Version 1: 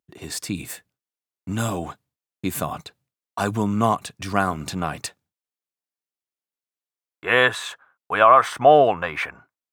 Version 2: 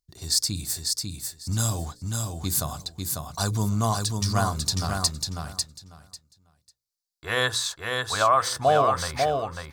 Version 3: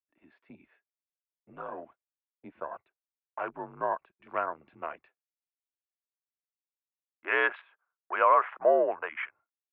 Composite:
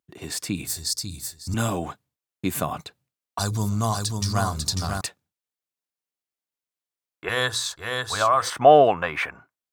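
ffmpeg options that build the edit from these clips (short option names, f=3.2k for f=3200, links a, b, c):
-filter_complex "[1:a]asplit=3[a][b][c];[0:a]asplit=4[d][e][f][g];[d]atrim=end=0.672[h];[a]atrim=start=0.668:end=1.542[i];[e]atrim=start=1.538:end=3.392[j];[b]atrim=start=3.388:end=5.012[k];[f]atrim=start=5.008:end=7.292[l];[c]atrim=start=7.288:end=8.502[m];[g]atrim=start=8.498[n];[h][i]acrossfade=d=0.004:c1=hsin:c2=hsin[o];[o][j]acrossfade=d=0.004:c1=hsin:c2=hsin[p];[p][k]acrossfade=d=0.004:c1=hsin:c2=hsin[q];[q][l]acrossfade=d=0.004:c1=hsin:c2=hsin[r];[r][m]acrossfade=d=0.004:c1=hsin:c2=hsin[s];[s][n]acrossfade=d=0.004:c1=hsin:c2=hsin"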